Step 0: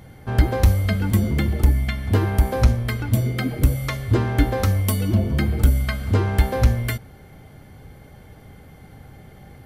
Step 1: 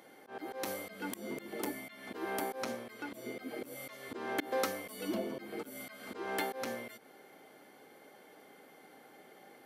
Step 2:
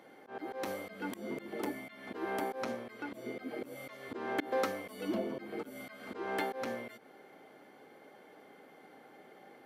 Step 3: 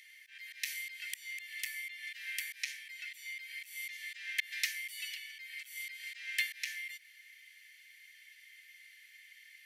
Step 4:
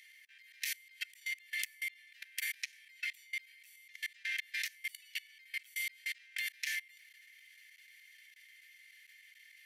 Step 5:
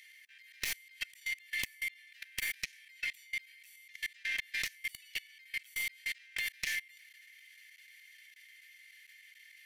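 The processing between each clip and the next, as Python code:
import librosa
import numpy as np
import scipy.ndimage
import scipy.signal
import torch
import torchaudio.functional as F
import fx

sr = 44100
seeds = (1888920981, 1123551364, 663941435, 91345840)

y1 = scipy.signal.sosfilt(scipy.signal.butter(4, 290.0, 'highpass', fs=sr, output='sos'), x)
y1 = fx.auto_swell(y1, sr, attack_ms=191.0)
y1 = y1 * 10.0 ** (-6.0 / 20.0)
y2 = fx.high_shelf(y1, sr, hz=4500.0, db=-11.5)
y2 = y2 * 10.0 ** (1.5 / 20.0)
y3 = scipy.signal.sosfilt(scipy.signal.cheby1(6, 3, 1800.0, 'highpass', fs=sr, output='sos'), y2)
y3 = y3 * 10.0 ** (11.5 / 20.0)
y4 = fx.chopper(y3, sr, hz=3.3, depth_pct=65, duty_pct=40)
y4 = fx.level_steps(y4, sr, step_db=23)
y4 = y4 * 10.0 ** (9.5 / 20.0)
y5 = fx.tracing_dist(y4, sr, depth_ms=0.095)
y5 = y5 * 10.0 ** (2.0 / 20.0)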